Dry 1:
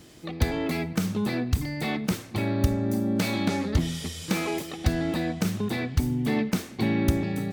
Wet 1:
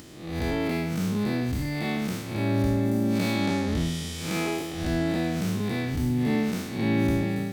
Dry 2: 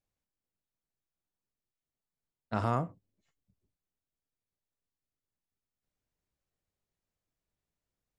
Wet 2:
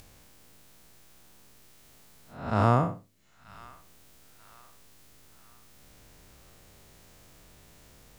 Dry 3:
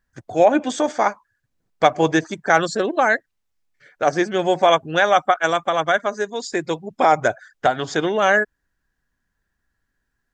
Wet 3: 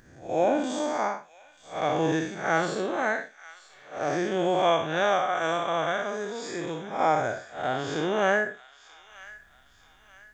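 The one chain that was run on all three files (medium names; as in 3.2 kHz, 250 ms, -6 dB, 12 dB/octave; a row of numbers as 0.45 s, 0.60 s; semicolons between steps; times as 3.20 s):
spectral blur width 167 ms; upward compressor, threshold -44 dBFS; feedback echo behind a high-pass 936 ms, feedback 42%, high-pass 1.6 kHz, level -15 dB; normalise loudness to -27 LUFS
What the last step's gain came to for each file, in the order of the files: +2.5 dB, +10.0 dB, -2.5 dB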